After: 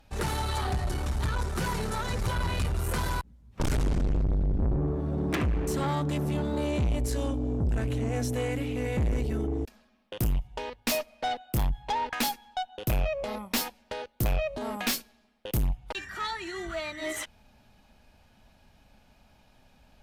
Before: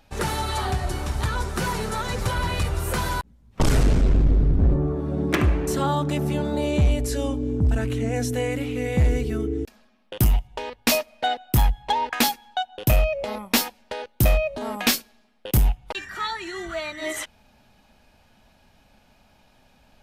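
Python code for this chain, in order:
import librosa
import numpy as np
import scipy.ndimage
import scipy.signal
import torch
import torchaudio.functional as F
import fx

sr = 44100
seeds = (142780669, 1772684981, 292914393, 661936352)

y = fx.low_shelf(x, sr, hz=130.0, db=5.5)
y = fx.tube_stage(y, sr, drive_db=20.0, bias=0.3)
y = y * 10.0 ** (-3.0 / 20.0)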